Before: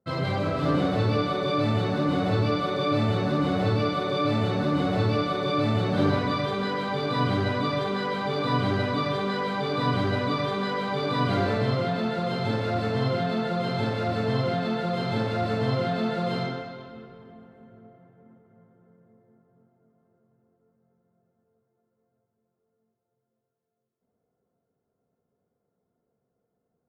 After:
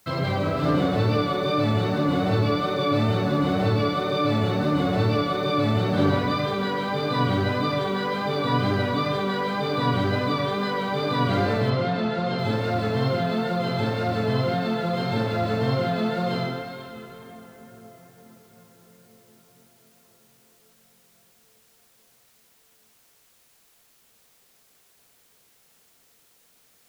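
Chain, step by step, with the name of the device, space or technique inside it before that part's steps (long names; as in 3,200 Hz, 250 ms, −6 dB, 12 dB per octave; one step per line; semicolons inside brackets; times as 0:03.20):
noise-reduction cassette on a plain deck (one half of a high-frequency compander encoder only; tape wow and flutter 23 cents; white noise bed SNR 35 dB)
0:11.70–0:12.39: low-pass filter 6,100 Hz 12 dB per octave
level +2 dB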